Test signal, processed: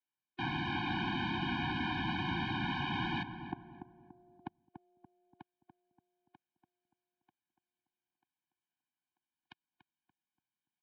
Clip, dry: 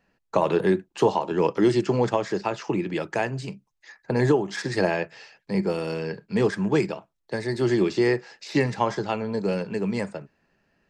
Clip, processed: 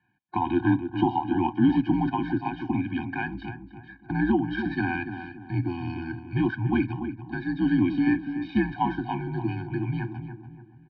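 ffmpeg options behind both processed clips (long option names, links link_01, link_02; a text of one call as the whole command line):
ffmpeg -i in.wav -filter_complex "[0:a]asplit=2[link_01][link_02];[link_02]adelay=288,lowpass=frequency=1300:poles=1,volume=-8dB,asplit=2[link_03][link_04];[link_04]adelay=288,lowpass=frequency=1300:poles=1,volume=0.41,asplit=2[link_05][link_06];[link_06]adelay=288,lowpass=frequency=1300:poles=1,volume=0.41,asplit=2[link_07][link_08];[link_08]adelay=288,lowpass=frequency=1300:poles=1,volume=0.41,asplit=2[link_09][link_10];[link_10]adelay=288,lowpass=frequency=1300:poles=1,volume=0.41[link_11];[link_03][link_05][link_07][link_09][link_11]amix=inputs=5:normalize=0[link_12];[link_01][link_12]amix=inputs=2:normalize=0,highpass=frequency=190:width_type=q:width=0.5412,highpass=frequency=190:width_type=q:width=1.307,lowpass=frequency=3600:width_type=q:width=0.5176,lowpass=frequency=3600:width_type=q:width=0.7071,lowpass=frequency=3600:width_type=q:width=1.932,afreqshift=-76,afftfilt=real='re*eq(mod(floor(b*sr/1024/360),2),0)':imag='im*eq(mod(floor(b*sr/1024/360),2),0)':win_size=1024:overlap=0.75" out.wav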